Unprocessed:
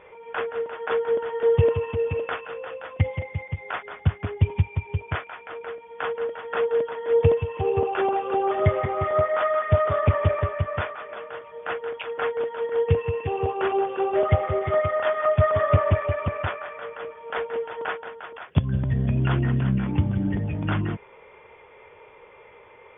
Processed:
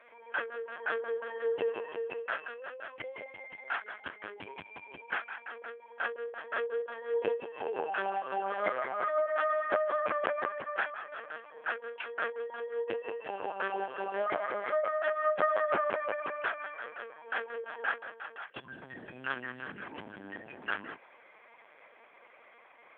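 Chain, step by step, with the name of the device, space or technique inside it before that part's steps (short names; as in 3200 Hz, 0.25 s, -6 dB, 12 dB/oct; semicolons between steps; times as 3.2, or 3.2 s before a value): talking toy (LPC vocoder at 8 kHz pitch kept; HPF 590 Hz 12 dB/oct; bell 1600 Hz +10 dB 0.28 oct); gain -6 dB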